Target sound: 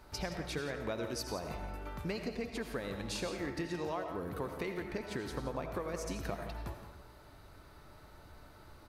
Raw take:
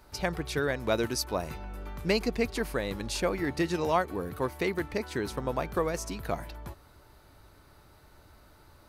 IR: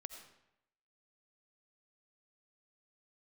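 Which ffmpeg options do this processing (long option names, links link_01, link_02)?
-filter_complex "[0:a]highshelf=frequency=6400:gain=-5.5,acompressor=threshold=-36dB:ratio=6,aecho=1:1:171:0.237[link_01];[1:a]atrim=start_sample=2205[link_02];[link_01][link_02]afir=irnorm=-1:irlink=0,volume=5.5dB"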